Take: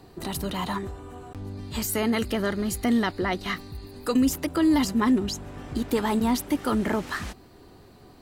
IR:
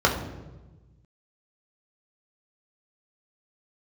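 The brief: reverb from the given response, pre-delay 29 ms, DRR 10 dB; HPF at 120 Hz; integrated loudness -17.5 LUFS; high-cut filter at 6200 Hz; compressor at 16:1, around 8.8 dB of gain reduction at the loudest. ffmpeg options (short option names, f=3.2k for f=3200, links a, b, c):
-filter_complex "[0:a]highpass=120,lowpass=6.2k,acompressor=threshold=-26dB:ratio=16,asplit=2[a][b];[1:a]atrim=start_sample=2205,adelay=29[c];[b][c]afir=irnorm=-1:irlink=0,volume=-28dB[d];[a][d]amix=inputs=2:normalize=0,volume=14.5dB"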